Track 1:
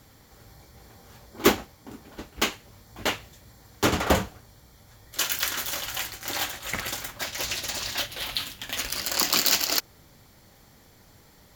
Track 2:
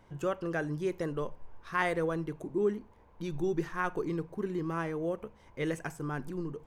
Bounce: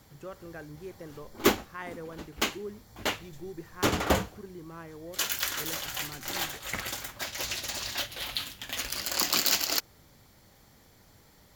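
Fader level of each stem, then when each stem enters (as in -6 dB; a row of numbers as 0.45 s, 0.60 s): -3.5 dB, -10.5 dB; 0.00 s, 0.00 s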